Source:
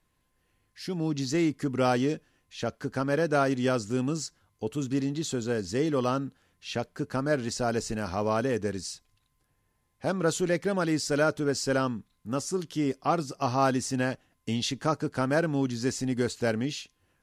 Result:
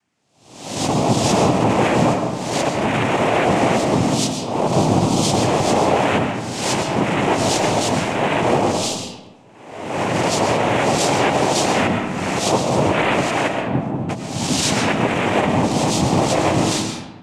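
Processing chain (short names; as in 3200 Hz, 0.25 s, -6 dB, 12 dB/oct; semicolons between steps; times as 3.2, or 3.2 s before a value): spectral swells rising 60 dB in 0.92 s; AGC gain up to 13 dB; limiter -9 dBFS, peak gain reduction 7.5 dB; 13.47–14.08 band-pass 480 Hz -> 120 Hz, Q 2; noise vocoder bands 4; reverb RT60 1.2 s, pre-delay 80 ms, DRR 4 dB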